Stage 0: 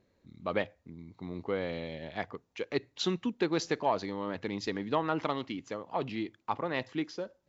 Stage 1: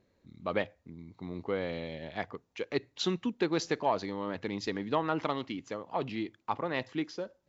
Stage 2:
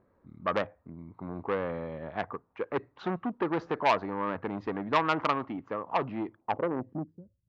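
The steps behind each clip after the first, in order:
nothing audible
low-pass sweep 1200 Hz -> 100 Hz, 6.27–7.29; core saturation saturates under 1700 Hz; gain +2.5 dB

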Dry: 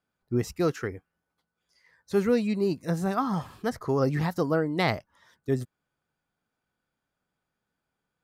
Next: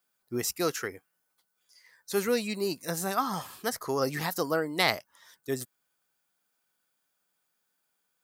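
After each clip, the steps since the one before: RIAA curve recording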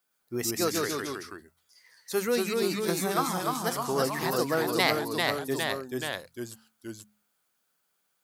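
notches 50/100/150/200/250 Hz; echoes that change speed 0.108 s, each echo -1 st, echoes 3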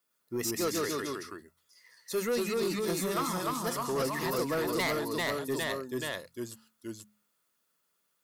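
notch comb 780 Hz; soft clip -24.5 dBFS, distortion -13 dB

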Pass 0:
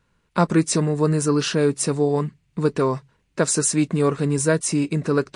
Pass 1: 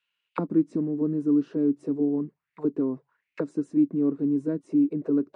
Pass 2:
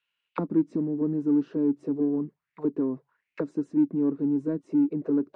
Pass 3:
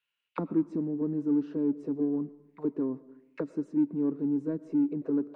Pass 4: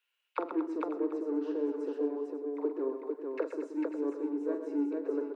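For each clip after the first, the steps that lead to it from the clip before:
auto-wah 280–2900 Hz, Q 4.8, down, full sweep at -18 dBFS; gain +2 dB
in parallel at -11.5 dB: soft clip -24 dBFS, distortion -10 dB; on the sum: air absorption 70 m; gain -2 dB
reverb RT60 0.85 s, pre-delay 65 ms, DRR 18 dB; gain -3.5 dB
steep high-pass 360 Hz 36 dB/oct; on a send: tapped delay 45/128/227/449/543/742 ms -8.5/-8.5/-12.5/-3.5/-13.5/-16.5 dB; on the sum: gain +2 dB

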